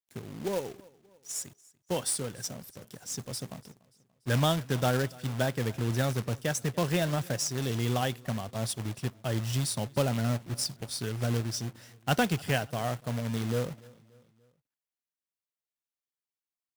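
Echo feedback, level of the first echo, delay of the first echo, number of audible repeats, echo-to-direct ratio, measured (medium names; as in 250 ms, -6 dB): 49%, -23.5 dB, 290 ms, 2, -22.5 dB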